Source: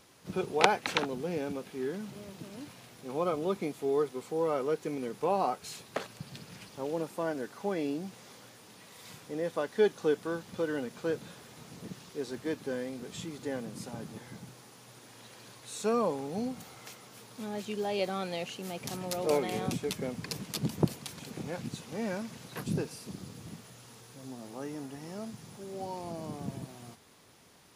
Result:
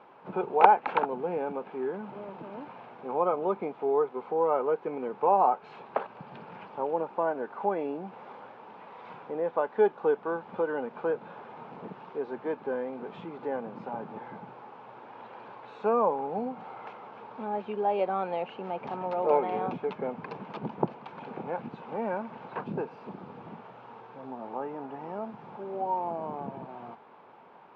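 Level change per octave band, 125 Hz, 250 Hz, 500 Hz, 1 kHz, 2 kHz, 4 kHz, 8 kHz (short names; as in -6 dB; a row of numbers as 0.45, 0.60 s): -6.0 dB, -1.5 dB, +3.5 dB, +9.0 dB, -1.0 dB, under -10 dB, under -35 dB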